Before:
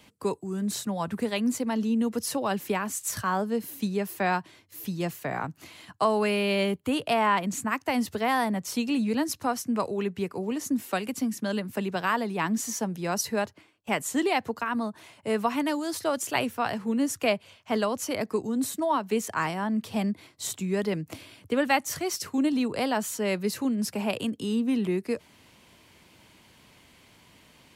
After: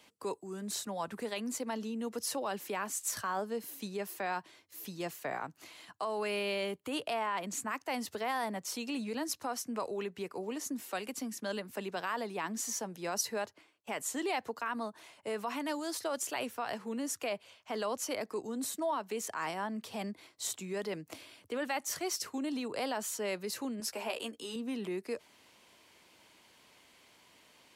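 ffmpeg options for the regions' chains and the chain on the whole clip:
ffmpeg -i in.wav -filter_complex "[0:a]asettb=1/sr,asplit=3[link_01][link_02][link_03];[link_01]atrim=end=23.804[link_04];[link_02]atrim=start=23.8:end=24.56,asetpts=PTS-STARTPTS,afade=type=in:duration=0.004:curve=qsin,afade=type=out:start_time=0.756:duration=0.004:curve=qsin,equalizer=frequency=160:width_type=o:width=1.5:gain=-11,asplit=2[link_05][link_06];[link_06]adelay=13,volume=-5dB[link_07];[link_05][link_07]amix=inputs=2:normalize=0,atrim=end_sample=33516[link_08];[link_03]atrim=start=24.556[link_09];[link_04][link_08]acrossfade=duration=0.004:curve1=hsin:curve2=qsin[link_10];[link_10][link_09]acrossfade=duration=0.004:curve1=qsin:curve2=hsin,highshelf=frequency=5000:gain=-10,alimiter=limit=-21.5dB:level=0:latency=1:release=30,bass=frequency=250:gain=-13,treble=frequency=4000:gain=8,volume=-4dB" out.wav

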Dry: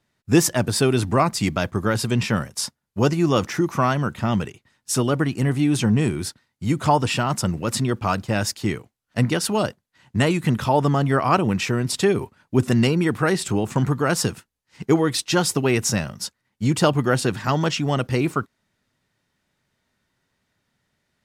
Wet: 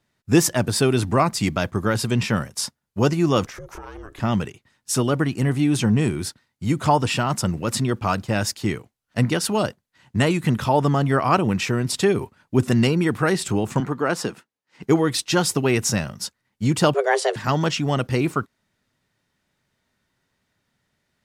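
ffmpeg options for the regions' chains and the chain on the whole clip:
ffmpeg -i in.wav -filter_complex "[0:a]asettb=1/sr,asplit=3[link_01][link_02][link_03];[link_01]atrim=end=3.464[link_04];[link_02]atrim=start=3.46:end=4.2,asetpts=PTS-STARTPTS,afade=type=in:duration=0.004:curve=qsin,afade=type=out:start_time=0.736:duration=0.004:curve=qsin,acompressor=threshold=-31dB:ratio=12:attack=3.2:release=140:knee=1:detection=peak,aeval=exprs='val(0)*sin(2*PI*200*n/s)':channel_layout=same[link_05];[link_03]atrim=start=4.196[link_06];[link_04][link_05]acrossfade=duration=0.004:curve1=hsin:curve2=qsin[link_07];[link_07][link_06]acrossfade=duration=0.004:curve1=qsin:curve2=hsin,asettb=1/sr,asplit=3[link_08][link_09][link_10];[link_08]atrim=end=13.804[link_11];[link_09]atrim=start=13.8:end=14.83,asetpts=PTS-STARTPTS,afade=type=in:duration=0.004:curve=qsin,afade=type=out:start_time=1.026:duration=0.004:curve=qsin,highpass=220,highshelf=frequency=4300:gain=-10.5[link_12];[link_10]atrim=start=14.826[link_13];[link_11][link_12]acrossfade=duration=0.004:curve1=hsin:curve2=qsin[link_14];[link_14][link_13]acrossfade=duration=0.004:curve1=qsin:curve2=hsin,asettb=1/sr,asplit=3[link_15][link_16][link_17];[link_15]atrim=end=16.944[link_18];[link_16]atrim=start=16.94:end=17.36,asetpts=PTS-STARTPTS,afade=type=in:duration=0.004:curve=qsin,afade=type=out:start_time=0.416:duration=0.004:curve=qsin,lowpass=frequency=9300:width=0.5412,lowpass=frequency=9300:width=1.3066,afreqshift=270[link_19];[link_17]atrim=start=17.356[link_20];[link_18][link_19]acrossfade=duration=0.004:curve1=hsin:curve2=qsin[link_21];[link_21][link_20]acrossfade=duration=0.004:curve1=qsin:curve2=hsin" out.wav

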